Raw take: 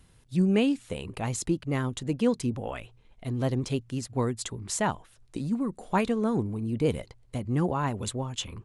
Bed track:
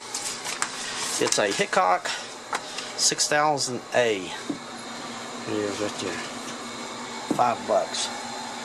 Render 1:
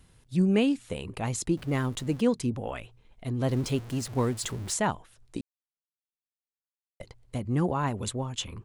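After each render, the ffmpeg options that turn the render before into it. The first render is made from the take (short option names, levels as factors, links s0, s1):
-filter_complex "[0:a]asettb=1/sr,asplit=3[s0][s1][s2];[s0]atrim=end=1.574[s3];[s1]atrim=start=1.57:end=2.21,asetpts=PTS-STARTPTS,afade=t=in:d=0.004:c=qsin,afade=t=out:st=0.636:d=0.004:c=qsin,aeval=exprs='val(0)+0.5*0.0075*sgn(val(0))':c=same[s4];[s2]atrim=start=2.206[s5];[s3][s4]acrossfade=d=0.004:c1=hsin:c2=qsin[s6];[s6][s5]acrossfade=d=0.004:c1=qsin:c2=hsin,asettb=1/sr,asplit=3[s7][s8][s9];[s7]atrim=end=3.484[s10];[s8]atrim=start=3.48:end=4.74,asetpts=PTS-STARTPTS,afade=t=in:d=0.004:c=qsin,afade=t=out:st=1.256:d=0.004:c=qsin,aeval=exprs='val(0)+0.5*0.0126*sgn(val(0))':c=same[s11];[s9]atrim=start=4.736[s12];[s10][s11]acrossfade=d=0.004:c1=hsin:c2=qsin[s13];[s13][s12]acrossfade=d=0.004:c1=qsin:c2=hsin,asplit=3[s14][s15][s16];[s14]atrim=end=5.41,asetpts=PTS-STARTPTS,afade=t=out:st=5.406:d=0.004:c=hsin[s17];[s15]atrim=start=5.41:end=7,asetpts=PTS-STARTPTS,volume=0[s18];[s16]atrim=start=7,asetpts=PTS-STARTPTS,afade=t=in:d=0.004:c=hsin[s19];[s17][s18][s19]concat=n=3:v=0:a=1"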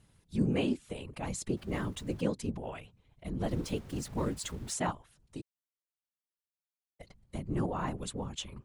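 -af "afftfilt=real='hypot(re,im)*cos(2*PI*random(0))':imag='hypot(re,im)*sin(2*PI*random(1))':win_size=512:overlap=0.75"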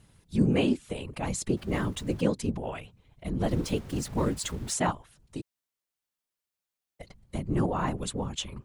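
-af "volume=1.88"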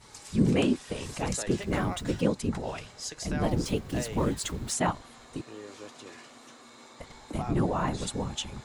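-filter_complex "[1:a]volume=0.15[s0];[0:a][s0]amix=inputs=2:normalize=0"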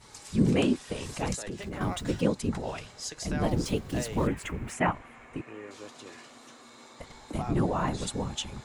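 -filter_complex "[0:a]asettb=1/sr,asplit=3[s0][s1][s2];[s0]atrim=end=1.344[s3];[s1]atrim=start=1.34:end=1.81,asetpts=PTS-STARTPTS,afade=t=in:d=0.004:c=qsin,afade=t=out:st=0.466:d=0.004:c=qsin,acompressor=threshold=0.0224:ratio=6:attack=3.2:release=140:knee=1:detection=peak[s4];[s2]atrim=start=1.806[s5];[s3][s4]acrossfade=d=0.004:c1=hsin:c2=qsin[s6];[s6][s5]acrossfade=d=0.004:c1=qsin:c2=hsin,asettb=1/sr,asplit=3[s7][s8][s9];[s7]atrim=end=4.274[s10];[s8]atrim=start=4.27:end=5.71,asetpts=PTS-STARTPTS,afade=t=in:d=0.004:c=qsin,afade=t=out:st=1.436:d=0.004:c=qsin,highshelf=f=3100:t=q:w=3:g=-9[s11];[s9]atrim=start=5.706[s12];[s10][s11]acrossfade=d=0.004:c1=hsin:c2=qsin[s13];[s13][s12]acrossfade=d=0.004:c1=qsin:c2=hsin"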